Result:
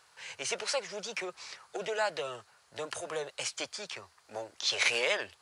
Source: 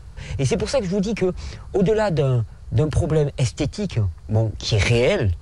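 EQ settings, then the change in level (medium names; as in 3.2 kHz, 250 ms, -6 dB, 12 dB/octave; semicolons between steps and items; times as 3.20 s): high-pass 960 Hz 12 dB/octave; -3.5 dB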